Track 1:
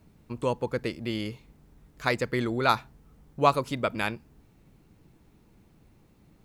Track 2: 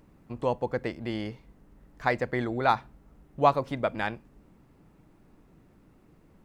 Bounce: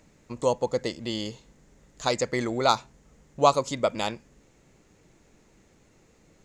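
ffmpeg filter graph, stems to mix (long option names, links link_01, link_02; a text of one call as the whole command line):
ffmpeg -i stem1.wav -i stem2.wav -filter_complex "[0:a]lowpass=frequency=6900:width_type=q:width=5.5,lowshelf=frequency=150:gain=-8.5,volume=0.5dB[link_01];[1:a]equalizer=frequency=125:width_type=o:width=1:gain=-10,equalizer=frequency=250:width_type=o:width=1:gain=-9,equalizer=frequency=500:width_type=o:width=1:gain=9,equalizer=frequency=1000:width_type=o:width=1:gain=-7,equalizer=frequency=2000:width_type=o:width=1:gain=9,equalizer=frequency=4000:width_type=o:width=1:gain=6,alimiter=limit=-10.5dB:level=0:latency=1:release=386,volume=-3.5dB[link_02];[link_01][link_02]amix=inputs=2:normalize=0" out.wav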